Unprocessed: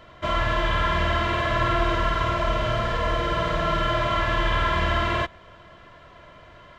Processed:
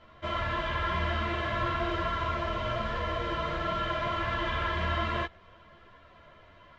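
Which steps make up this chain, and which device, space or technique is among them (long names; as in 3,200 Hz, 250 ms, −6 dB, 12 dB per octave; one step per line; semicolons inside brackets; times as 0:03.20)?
string-machine ensemble chorus (string-ensemble chorus; low-pass filter 5,500 Hz 12 dB per octave)
level −4 dB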